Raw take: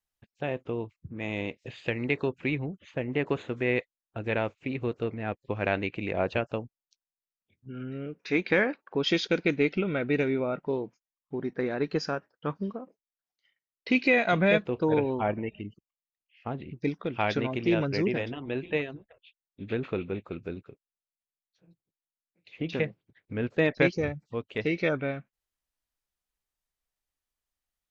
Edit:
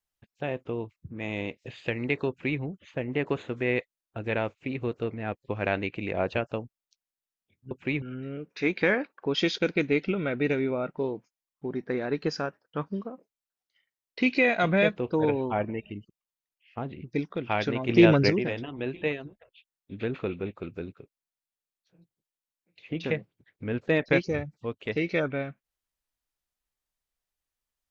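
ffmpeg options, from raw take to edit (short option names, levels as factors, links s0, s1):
-filter_complex "[0:a]asplit=5[s0][s1][s2][s3][s4];[s0]atrim=end=7.712[s5];[s1]atrim=start=2.288:end=2.602[s6];[s2]atrim=start=7.708:end=17.582[s7];[s3]atrim=start=17.578:end=17.992,asetpts=PTS-STARTPTS,volume=2.51[s8];[s4]atrim=start=17.988[s9];[s5][s6]acrossfade=d=0.004:c1=hsin:c2=hsin[s10];[s10][s7]acrossfade=d=0.004:c1=hsin:c2=hsin[s11];[s11][s8]acrossfade=d=0.004:c1=hsin:c2=hsin[s12];[s12][s9]acrossfade=d=0.004:c1=hsin:c2=hsin"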